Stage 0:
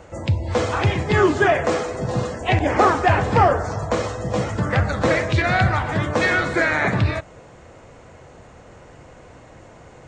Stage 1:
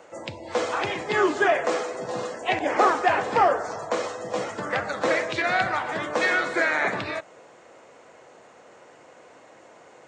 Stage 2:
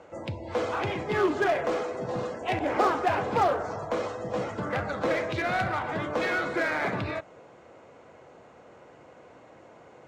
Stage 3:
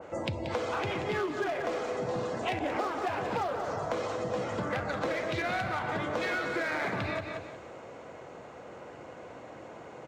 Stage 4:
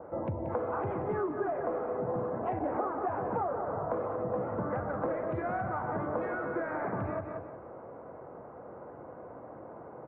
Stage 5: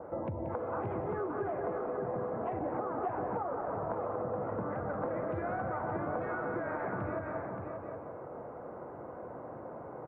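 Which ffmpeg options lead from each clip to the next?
-af "highpass=350,volume=-3dB"
-filter_complex "[0:a]aemphasis=mode=reproduction:type=bsi,bandreject=f=1.8k:w=15,asplit=2[a][b];[b]aeval=exprs='0.0631*(abs(mod(val(0)/0.0631+3,4)-2)-1)':c=same,volume=-9dB[c];[a][c]amix=inputs=2:normalize=0,volume=-5dB"
-af "aecho=1:1:181|362|543:0.316|0.0885|0.0248,acompressor=threshold=-35dB:ratio=6,adynamicequalizer=threshold=0.00251:dfrequency=2300:dqfactor=0.7:tfrequency=2300:tqfactor=0.7:attack=5:release=100:ratio=0.375:range=1.5:mode=boostabove:tftype=highshelf,volume=5dB"
-af "lowpass=f=1.3k:w=0.5412,lowpass=f=1.3k:w=1.3066"
-af "acompressor=threshold=-34dB:ratio=6,aecho=1:1:576:0.531,volume=1dB"

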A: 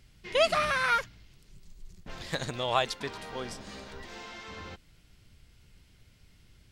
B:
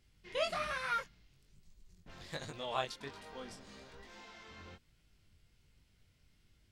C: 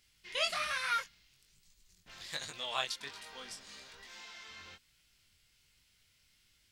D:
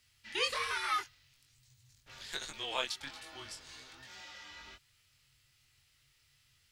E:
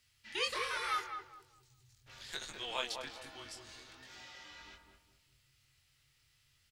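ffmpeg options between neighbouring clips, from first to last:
-af "flanger=delay=19:depth=4.6:speed=1.2,volume=-7dB"
-af "tiltshelf=f=1.1k:g=-9"
-af "afreqshift=-140"
-filter_complex "[0:a]asplit=2[a][b];[b]adelay=205,lowpass=f=860:p=1,volume=-3dB,asplit=2[c][d];[d]adelay=205,lowpass=f=860:p=1,volume=0.41,asplit=2[e][f];[f]adelay=205,lowpass=f=860:p=1,volume=0.41,asplit=2[g][h];[h]adelay=205,lowpass=f=860:p=1,volume=0.41,asplit=2[i][j];[j]adelay=205,lowpass=f=860:p=1,volume=0.41[k];[a][c][e][g][i][k]amix=inputs=6:normalize=0,volume=-2.5dB"

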